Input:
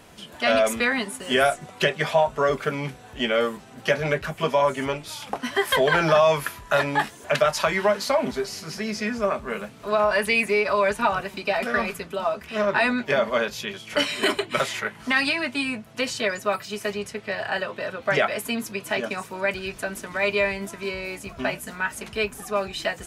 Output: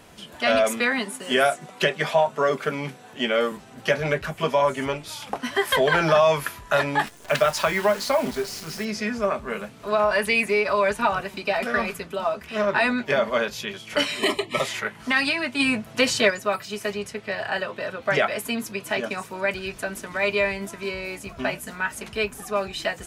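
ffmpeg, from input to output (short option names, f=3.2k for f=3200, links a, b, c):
-filter_complex "[0:a]asettb=1/sr,asplit=3[a][b][c];[a]atrim=end=0.644[d];[b]atrim=start=0.64:end=3.52,asetpts=PTS-STARTPTS,afade=t=in:d=0.004:c=qsin,afade=t=out:st=2.876:d=0.004:c=qsin,highpass=f=140:w=0.5412,highpass=f=140:w=1.3066[e];[c]atrim=start=3.516[f];[d][e]acrossfade=d=0.004:c1=hsin:c2=qsin[g];[g][f]acrossfade=d=0.004:c1=qsin:c2=hsin,asettb=1/sr,asplit=3[h][i][j];[h]atrim=end=7.064[k];[i]atrim=start=7.06:end=8.85,asetpts=PTS-STARTPTS,afade=t=in:d=0.004:c=qsin,afade=t=out:st=1.786:d=0.004:c=qsin,acrusher=bits=7:dc=4:mix=0:aa=0.000001[l];[j]atrim=start=8.846[m];[k][l]acrossfade=d=0.004:c1=hsin:c2=qsin[n];[n][m]acrossfade=d=0.004:c1=qsin:c2=hsin,asettb=1/sr,asplit=3[o][p][q];[o]atrim=end=14.194[r];[p]atrim=start=14.19:end=14.66,asetpts=PTS-STARTPTS,afade=t=in:d=0.004:c=qsin,afade=t=out:st=0.466:d=0.004:c=qsin,asuperstop=centerf=1500:order=12:qfactor=4.1[s];[q]atrim=start=14.656[t];[r][s]acrossfade=d=0.004:c1=hsin:c2=qsin[u];[u][t]acrossfade=d=0.004:c1=qsin:c2=hsin,asplit=3[v][w][x];[v]afade=t=out:st=15.59:d=0.02[y];[w]acontrast=56,afade=t=in:st=15.59:d=0.02,afade=t=out:st=16.29:d=0.02[z];[x]afade=t=in:st=16.29:d=0.02[aa];[y][z][aa]amix=inputs=3:normalize=0"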